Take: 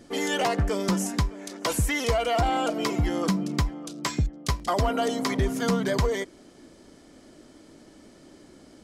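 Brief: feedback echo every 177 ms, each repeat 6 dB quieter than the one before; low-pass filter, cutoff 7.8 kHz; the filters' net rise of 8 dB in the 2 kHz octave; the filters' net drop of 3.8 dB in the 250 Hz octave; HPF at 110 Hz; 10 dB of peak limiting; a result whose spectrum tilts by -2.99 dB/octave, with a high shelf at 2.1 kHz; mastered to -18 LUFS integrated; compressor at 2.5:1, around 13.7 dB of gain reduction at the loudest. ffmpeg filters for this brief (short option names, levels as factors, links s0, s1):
-af "highpass=110,lowpass=7800,equalizer=f=250:t=o:g=-5,equalizer=f=2000:t=o:g=4.5,highshelf=f=2100:g=9,acompressor=threshold=0.01:ratio=2.5,alimiter=level_in=1.88:limit=0.0631:level=0:latency=1,volume=0.531,aecho=1:1:177|354|531|708|885|1062:0.501|0.251|0.125|0.0626|0.0313|0.0157,volume=11.2"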